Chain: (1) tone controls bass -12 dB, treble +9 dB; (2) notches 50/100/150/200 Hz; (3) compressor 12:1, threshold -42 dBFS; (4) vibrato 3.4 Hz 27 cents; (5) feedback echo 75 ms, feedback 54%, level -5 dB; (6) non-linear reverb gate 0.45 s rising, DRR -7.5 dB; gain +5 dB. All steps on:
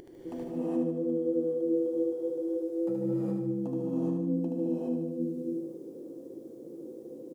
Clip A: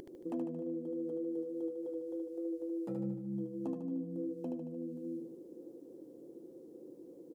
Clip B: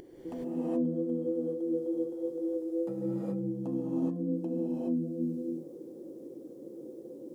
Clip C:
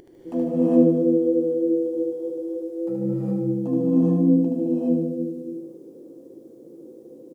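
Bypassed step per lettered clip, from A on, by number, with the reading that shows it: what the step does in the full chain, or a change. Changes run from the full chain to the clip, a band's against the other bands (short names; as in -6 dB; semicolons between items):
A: 6, echo-to-direct 9.5 dB to -3.5 dB; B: 5, echo-to-direct 9.5 dB to 7.5 dB; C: 3, mean gain reduction 4.5 dB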